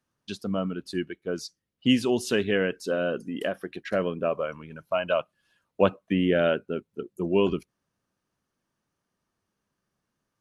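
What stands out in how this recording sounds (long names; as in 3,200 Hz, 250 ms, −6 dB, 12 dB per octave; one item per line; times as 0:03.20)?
background noise floor −82 dBFS
spectral slope −4.5 dB per octave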